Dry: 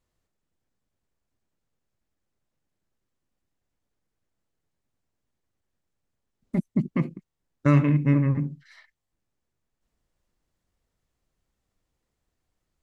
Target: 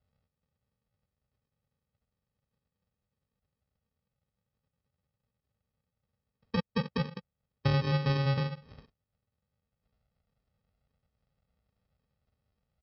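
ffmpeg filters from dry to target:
-af "aresample=11025,acrusher=samples=16:mix=1:aa=0.000001,aresample=44100,acompressor=threshold=-30dB:ratio=3,highpass=61,aecho=1:1:1.5:0.91"

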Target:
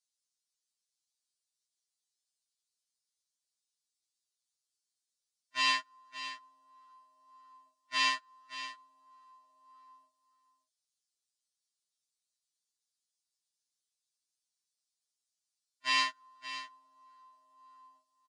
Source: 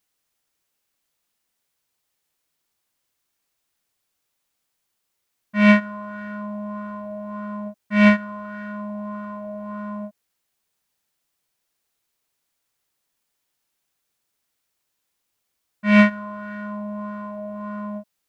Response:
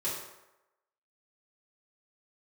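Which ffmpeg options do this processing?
-filter_complex "[0:a]acompressor=threshold=-22dB:ratio=2.5,tremolo=f=60:d=0.788,agate=range=-23dB:threshold=-27dB:ratio=16:detection=peak,highpass=1.3k,asplit=2[a][b];[b]aecho=0:1:573:0.224[c];[a][c]amix=inputs=2:normalize=0,aresample=22050,aresample=44100,highshelf=f=3.1k:t=q:w=1.5:g=12,afftfilt=real='re*2.45*eq(mod(b,6),0)':imag='im*2.45*eq(mod(b,6),0)':win_size=2048:overlap=0.75,volume=7.5dB"

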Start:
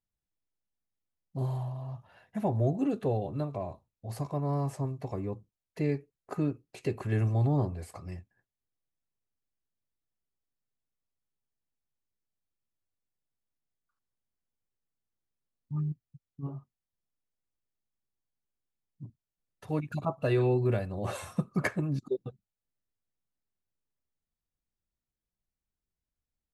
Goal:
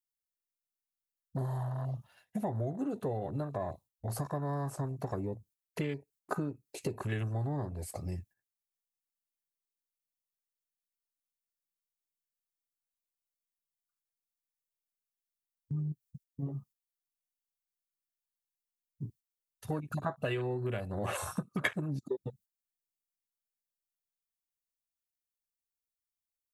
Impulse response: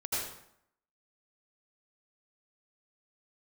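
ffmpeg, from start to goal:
-af "agate=range=-9dB:threshold=-58dB:ratio=16:detection=peak,afwtdn=0.00708,acompressor=threshold=-38dB:ratio=6,crystalizer=i=8.5:c=0,volume=5dB"

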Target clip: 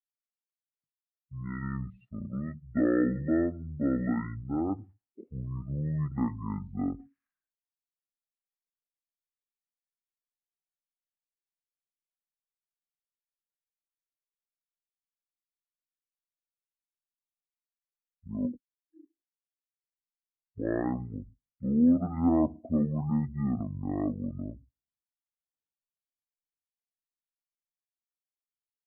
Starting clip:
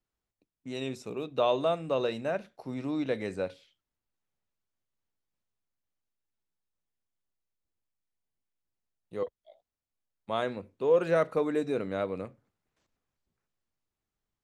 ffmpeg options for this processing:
-af "lowpass=4.7k,asetrate=22050,aresample=44100,afftdn=nr=31:nf=-41"

